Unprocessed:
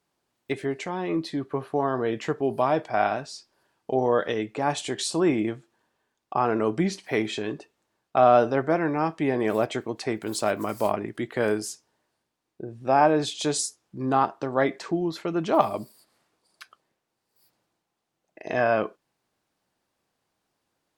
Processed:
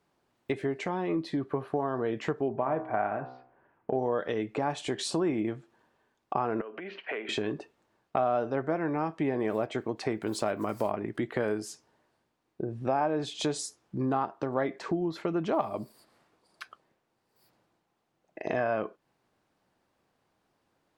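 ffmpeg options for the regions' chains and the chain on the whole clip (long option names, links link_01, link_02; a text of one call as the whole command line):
ffmpeg -i in.wav -filter_complex "[0:a]asettb=1/sr,asplit=3[link_01][link_02][link_03];[link_01]atrim=end=2.484[link_04];[link_02]atrim=start=2.48:end=3.95,asetpts=PTS-STARTPTS,afade=type=in:duration=0.004:curve=qsin,afade=type=out:start_time=1.466:duration=0.004:curve=qsin,lowpass=frequency=2200:width=0.5412,lowpass=frequency=2200:width=1.3066,bandreject=frequency=63.31:width_type=h:width=4,bandreject=frequency=126.62:width_type=h:width=4,bandreject=frequency=189.93:width_type=h:width=4,bandreject=frequency=253.24:width_type=h:width=4,bandreject=frequency=316.55:width_type=h:width=4,bandreject=frequency=379.86:width_type=h:width=4,bandreject=frequency=443.17:width_type=h:width=4,bandreject=frequency=506.48:width_type=h:width=4,bandreject=frequency=569.79:width_type=h:width=4,bandreject=frequency=633.1:width_type=h:width=4,bandreject=frequency=696.41:width_type=h:width=4,bandreject=frequency=759.72:width_type=h:width=4,bandreject=frequency=823.03:width_type=h:width=4,bandreject=frequency=886.34:width_type=h:width=4,bandreject=frequency=949.65:width_type=h:width=4,bandreject=frequency=1012.96:width_type=h:width=4,bandreject=frequency=1076.27:width_type=h:width=4,bandreject=frequency=1139.58:width_type=h:width=4,bandreject=frequency=1202.89:width_type=h:width=4,bandreject=frequency=1266.2:width_type=h:width=4,bandreject=frequency=1329.51:width_type=h:width=4,bandreject=frequency=1392.82:width_type=h:width=4,bandreject=frequency=1456.13:width_type=h:width=4[link_05];[link_03]atrim=start=3.946[link_06];[link_04][link_05]acrossfade=duration=0.004:curve1=hsin:curve2=qsin[link_07];[link_07][link_06]acrossfade=duration=0.004:curve1=qsin:curve2=hsin,asettb=1/sr,asplit=3[link_08][link_09][link_10];[link_08]atrim=end=6.614[link_11];[link_09]atrim=start=6.61:end=7.29,asetpts=PTS-STARTPTS,afade=type=in:duration=0.004:curve=qsin,afade=type=out:start_time=0.676:duration=0.004:curve=qsin,acompressor=threshold=-31dB:ratio=12:attack=3.2:release=140:knee=1:detection=peak,highpass=frequency=310:width=0.5412,highpass=frequency=310:width=1.3066,equalizer=frequency=320:width_type=q:width=4:gain=-9,equalizer=frequency=830:width_type=q:width=4:gain=-6,equalizer=frequency=1500:width_type=q:width=4:gain=6,equalizer=frequency=2800:width_type=q:width=4:gain=9,lowpass=frequency=2900:width=0.5412,lowpass=frequency=2900:width=1.3066[link_12];[link_10]atrim=start=7.286[link_13];[link_11][link_12]acrossfade=duration=0.004:curve1=hsin:curve2=qsin[link_14];[link_14][link_13]acrossfade=duration=0.004:curve1=qsin:curve2=hsin,highshelf=frequency=3500:gain=-10.5,acompressor=threshold=-34dB:ratio=3,volume=5dB" out.wav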